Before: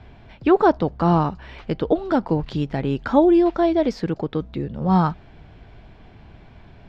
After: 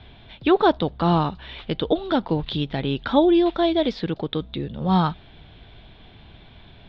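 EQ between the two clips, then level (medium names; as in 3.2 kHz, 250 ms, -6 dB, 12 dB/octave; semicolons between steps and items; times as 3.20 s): resonant low-pass 3.6 kHz, resonance Q 6.2; -2.0 dB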